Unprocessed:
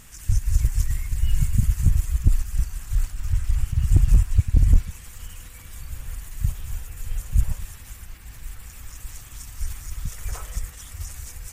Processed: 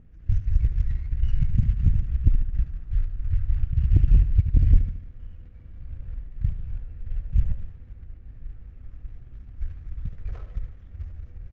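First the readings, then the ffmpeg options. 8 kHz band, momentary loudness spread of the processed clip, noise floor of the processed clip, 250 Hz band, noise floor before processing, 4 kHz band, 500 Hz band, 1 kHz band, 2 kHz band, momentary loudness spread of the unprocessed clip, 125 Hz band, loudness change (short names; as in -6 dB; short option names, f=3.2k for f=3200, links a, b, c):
under -30 dB, 23 LU, -46 dBFS, -1.5 dB, -43 dBFS, under -15 dB, -3.5 dB, under -10 dB, under -10 dB, 20 LU, -1.0 dB, -0.5 dB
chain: -filter_complex "[0:a]acrossover=split=4900[a][b];[b]acompressor=threshold=-54dB:ratio=4:attack=1:release=60[c];[a][c]amix=inputs=2:normalize=0,equalizer=f=960:t=o:w=0.91:g=-12.5,adynamicsmooth=sensitivity=7.5:basefreq=530,asplit=2[d][e];[e]aecho=0:1:74|148|222|296|370|444:0.282|0.149|0.0792|0.042|0.0222|0.0118[f];[d][f]amix=inputs=2:normalize=0,aresample=16000,aresample=44100,volume=-1.5dB"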